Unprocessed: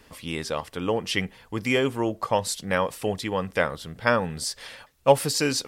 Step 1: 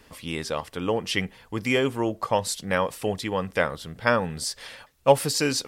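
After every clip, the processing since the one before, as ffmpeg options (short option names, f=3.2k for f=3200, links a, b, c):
-af anull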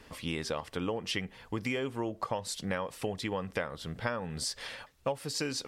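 -af "highshelf=f=9.7k:g=-9,acompressor=threshold=-30dB:ratio=8"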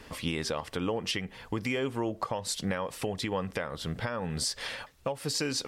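-af "alimiter=level_in=1dB:limit=-24dB:level=0:latency=1:release=187,volume=-1dB,volume=5dB"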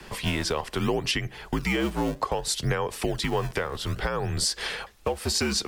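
-filter_complex "[0:a]afreqshift=-63,acrossover=split=230|1100[a][b][c];[a]acrusher=samples=31:mix=1:aa=0.000001:lfo=1:lforange=49.6:lforate=0.63[d];[d][b][c]amix=inputs=3:normalize=0,volume=5.5dB"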